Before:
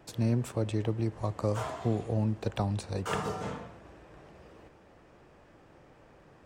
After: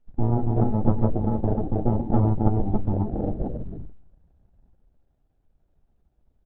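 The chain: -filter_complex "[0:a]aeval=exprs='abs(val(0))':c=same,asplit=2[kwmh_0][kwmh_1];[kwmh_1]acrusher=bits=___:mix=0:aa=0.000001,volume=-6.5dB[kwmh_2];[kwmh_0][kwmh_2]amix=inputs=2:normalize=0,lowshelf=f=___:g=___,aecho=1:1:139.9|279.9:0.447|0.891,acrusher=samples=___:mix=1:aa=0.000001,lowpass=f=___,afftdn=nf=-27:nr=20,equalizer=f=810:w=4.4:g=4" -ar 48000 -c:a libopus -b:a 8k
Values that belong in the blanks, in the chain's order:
5, 300, 10, 41, 1.1k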